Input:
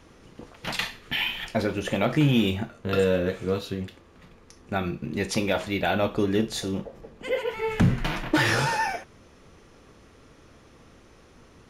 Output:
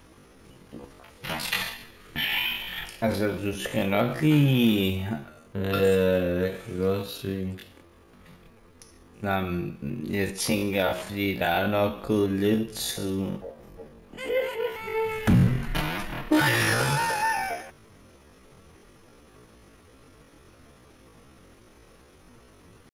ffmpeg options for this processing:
-af "aexciter=amount=4.3:drive=2.3:freq=9.6k,atempo=0.51"

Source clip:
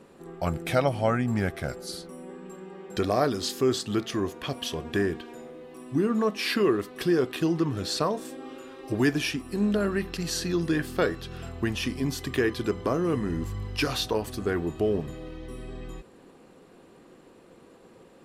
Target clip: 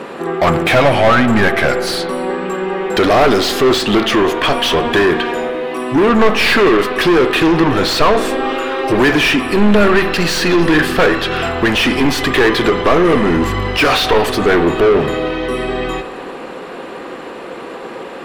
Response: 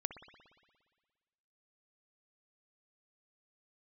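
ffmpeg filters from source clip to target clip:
-filter_complex "[0:a]asplit=2[a][b];[b]highpass=f=720:p=1,volume=30dB,asoftclip=type=tanh:threshold=-9.5dB[c];[a][c]amix=inputs=2:normalize=0,lowpass=f=5.6k:p=1,volume=-6dB,asplit=2[d][e];[e]asubboost=boost=4.5:cutoff=56[f];[1:a]atrim=start_sample=2205,lowpass=4k[g];[f][g]afir=irnorm=-1:irlink=0,volume=4dB[h];[d][h]amix=inputs=2:normalize=0,volume=-1dB"

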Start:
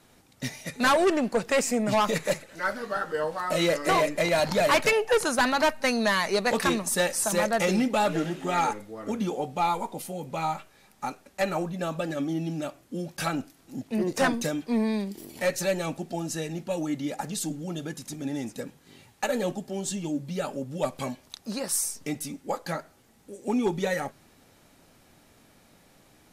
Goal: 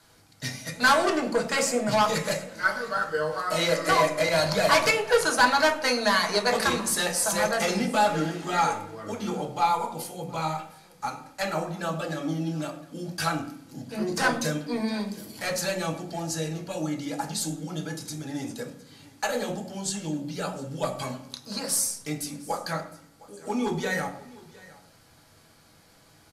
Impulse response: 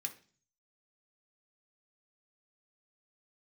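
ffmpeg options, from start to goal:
-filter_complex "[0:a]aecho=1:1:710:0.0841[a];[1:a]atrim=start_sample=2205,asetrate=26460,aresample=44100[b];[a][b]afir=irnorm=-1:irlink=0"

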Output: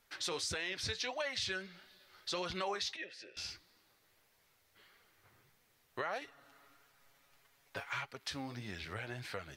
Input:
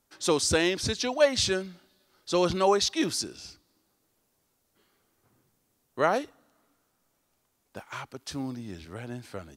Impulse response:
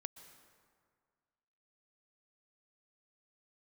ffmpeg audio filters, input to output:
-filter_complex "[0:a]asettb=1/sr,asplit=3[a][b][c];[a]atrim=end=2.964[d];[b]atrim=start=2.96:end=3.37,asetpts=PTS-STARTPTS,afade=t=in:d=0.004:c=qsin,afade=t=out:st=0.406:d=0.004:c=qsin,asplit=3[e][f][g];[e]bandpass=f=530:t=q:w=8,volume=0dB[h];[f]bandpass=f=1.84k:t=q:w=8,volume=-6dB[i];[g]bandpass=f=2.48k:t=q:w=8,volume=-9dB[j];[h][i][j]amix=inputs=3:normalize=0[k];[c]atrim=start=3.366[l];[d][k]acrossfade=d=0.004:c1=hsin:c2=qsin[m];[m][l]acrossfade=d=0.004:c1=qsin:c2=hsin,flanger=delay=4.1:depth=7.3:regen=53:speed=1.6:shape=sinusoidal,equalizer=f=250:t=o:w=1:g=-9,equalizer=f=2k:t=o:w=1:g=9,equalizer=f=4k:t=o:w=1:g=4,equalizer=f=8k:t=o:w=1:g=-4,alimiter=limit=-19dB:level=0:latency=1:release=28,asettb=1/sr,asplit=3[n][o][p];[n]atrim=end=6.214[q];[o]atrim=start=6.21:end=8.11,asetpts=PTS-STARTPTS,afade=t=in:d=0.004:c=qsin,afade=t=out:st=1.896:d=0.004:c=qsin,aecho=1:1:7.2:0.86,atrim=end_sample=83790[r];[p]atrim=start=8.106[s];[q][r]acrossfade=d=0.004:c1=hsin:c2=qsin[t];[t][s]acrossfade=d=0.004:c1=qsin:c2=hsin,acompressor=threshold=-45dB:ratio=3,volume=5dB"

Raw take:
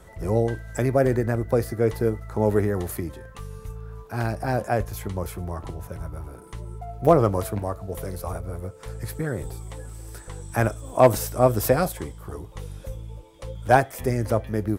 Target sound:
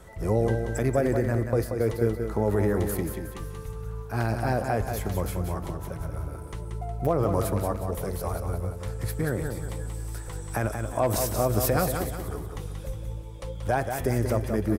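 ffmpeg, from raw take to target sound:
-filter_complex "[0:a]asettb=1/sr,asplit=3[a][b][c];[a]atrim=end=0.834[d];[b]atrim=start=0.83:end=2.22,asetpts=PTS-STARTPTS,afade=t=in:d=0.004:c=qsin,afade=t=out:st=1.386:d=0.004:c=qsin,agate=range=-33dB:threshold=-22dB:ratio=3:detection=peak[e];[c]atrim=start=2.216[f];[d][e]acrossfade=d=0.004:c1=hsin:c2=qsin[g];[g][f]acrossfade=d=0.004:c1=qsin:c2=hsin,alimiter=limit=-14.5dB:level=0:latency=1:release=59,aecho=1:1:182|364|546|728|910:0.473|0.194|0.0795|0.0326|0.0134"

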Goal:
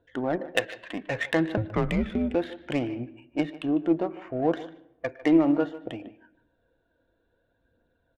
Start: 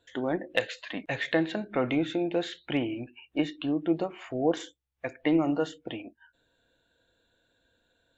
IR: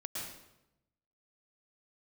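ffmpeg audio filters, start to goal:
-filter_complex "[0:a]adynamicsmooth=sensitivity=2.5:basefreq=1.5k,asettb=1/sr,asplit=3[a][b][c];[a]atrim=end=1.574[d];[b]atrim=start=1.57:end=2.35,asetpts=PTS-STARTPTS,afade=t=in:d=0.004:c=qsin,afade=t=out:st=0.776:d=0.004:c=qsin,afreqshift=-100[e];[c]atrim=start=2.346[f];[d][e]acrossfade=d=0.004:c1=hsin:c2=qsin[g];[g][f]acrossfade=d=0.004:c1=qsin:c2=hsin,aphaser=in_gain=1:out_gain=1:delay=3.6:decay=0.31:speed=0.64:type=triangular,asplit=2[h][i];[i]adelay=150,highpass=300,lowpass=3.4k,asoftclip=type=hard:threshold=-19.5dB,volume=-16dB[j];[h][j]amix=inputs=2:normalize=0,asplit=2[k][l];[1:a]atrim=start_sample=2205,lowpass=3.2k[m];[l][m]afir=irnorm=-1:irlink=0,volume=-20dB[n];[k][n]amix=inputs=2:normalize=0,volume=2dB"

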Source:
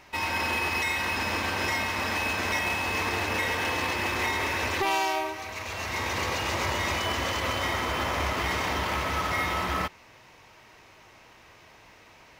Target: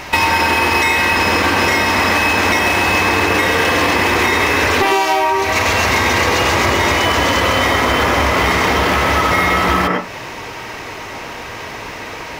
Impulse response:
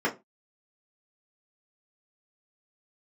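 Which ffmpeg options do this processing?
-filter_complex "[0:a]asplit=2[a][b];[1:a]atrim=start_sample=2205,adelay=97[c];[b][c]afir=irnorm=-1:irlink=0,volume=-14.5dB[d];[a][d]amix=inputs=2:normalize=0,acompressor=threshold=-34dB:ratio=10,alimiter=level_in=24dB:limit=-1dB:release=50:level=0:latency=1,volume=-1dB"

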